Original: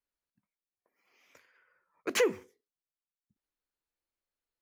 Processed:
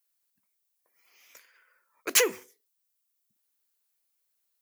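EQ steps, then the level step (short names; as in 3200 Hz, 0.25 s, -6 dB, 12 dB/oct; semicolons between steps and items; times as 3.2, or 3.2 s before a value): RIAA curve recording; +2.5 dB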